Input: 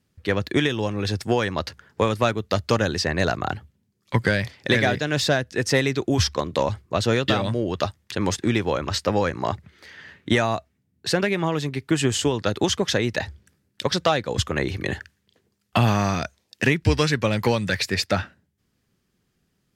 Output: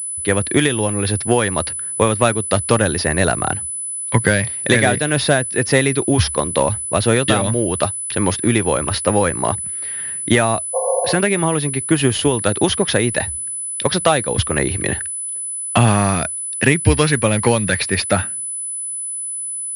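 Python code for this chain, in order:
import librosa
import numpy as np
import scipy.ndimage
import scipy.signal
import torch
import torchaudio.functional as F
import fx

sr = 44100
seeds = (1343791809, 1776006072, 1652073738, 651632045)

y = fx.spec_repair(x, sr, seeds[0], start_s=10.77, length_s=0.36, low_hz=400.0, high_hz=1100.0, source='after')
y = fx.pwm(y, sr, carrier_hz=10000.0)
y = y * librosa.db_to_amplitude(5.5)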